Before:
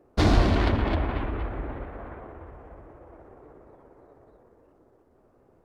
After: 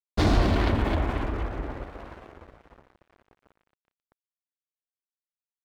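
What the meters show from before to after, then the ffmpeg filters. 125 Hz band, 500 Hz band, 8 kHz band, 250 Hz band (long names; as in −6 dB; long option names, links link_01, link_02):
−1.0 dB, −0.5 dB, can't be measured, −0.5 dB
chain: -filter_complex "[0:a]asplit=2[link_01][link_02];[link_02]alimiter=limit=-18dB:level=0:latency=1:release=34,volume=2dB[link_03];[link_01][link_03]amix=inputs=2:normalize=0,aeval=exprs='sgn(val(0))*max(abs(val(0))-0.015,0)':channel_layout=same,volume=-5dB"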